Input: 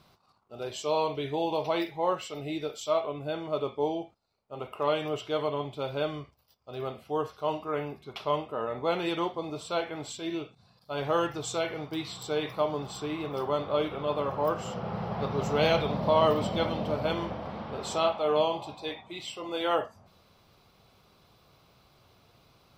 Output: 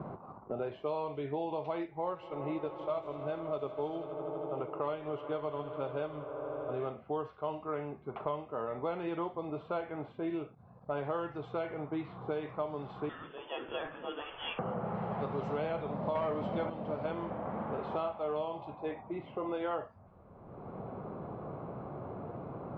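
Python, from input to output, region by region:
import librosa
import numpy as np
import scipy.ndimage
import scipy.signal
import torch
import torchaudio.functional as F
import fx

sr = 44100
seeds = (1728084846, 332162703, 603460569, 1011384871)

y = fx.chain(x, sr, fx.transient(attack_db=-1, sustain_db=-5),
    fx.echo_swell(ms=80, loudest=5, wet_db=-18), at=(1.83, 6.89))
y = fx.chain(y, sr, fx.highpass(hz=430.0, slope=24),
    fx.freq_invert(carrier_hz=3900), at=(13.09, 14.59))
y = fx.chain(y, sr, fx.high_shelf(hz=7100.0, db=-10.5),
    fx.leveller(passes=2), at=(16.15, 16.7))
y = scipy.signal.sosfilt(scipy.signal.butter(2, 1800.0, 'lowpass', fs=sr, output='sos'), y)
y = fx.env_lowpass(y, sr, base_hz=750.0, full_db=-24.0)
y = fx.band_squash(y, sr, depth_pct=100)
y = y * 10.0 ** (-6.5 / 20.0)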